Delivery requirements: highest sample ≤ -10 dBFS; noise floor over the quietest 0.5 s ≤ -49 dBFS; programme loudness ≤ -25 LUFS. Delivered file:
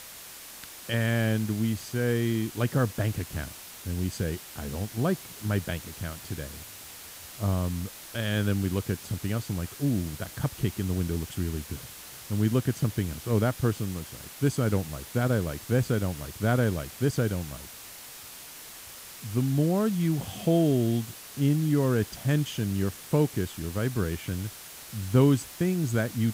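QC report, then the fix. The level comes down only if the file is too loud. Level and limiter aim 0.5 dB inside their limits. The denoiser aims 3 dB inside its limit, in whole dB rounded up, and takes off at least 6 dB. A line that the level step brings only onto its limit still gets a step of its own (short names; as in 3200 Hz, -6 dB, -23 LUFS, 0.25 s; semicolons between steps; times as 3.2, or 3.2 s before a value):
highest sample -8.5 dBFS: fail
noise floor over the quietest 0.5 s -45 dBFS: fail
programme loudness -28.5 LUFS: OK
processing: denoiser 7 dB, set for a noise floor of -45 dBFS; limiter -10.5 dBFS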